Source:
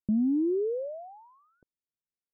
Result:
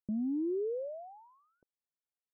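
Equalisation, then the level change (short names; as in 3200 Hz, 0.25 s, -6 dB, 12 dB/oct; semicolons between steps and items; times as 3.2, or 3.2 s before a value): LPF 1000 Hz; low shelf 380 Hz -11.5 dB; 0.0 dB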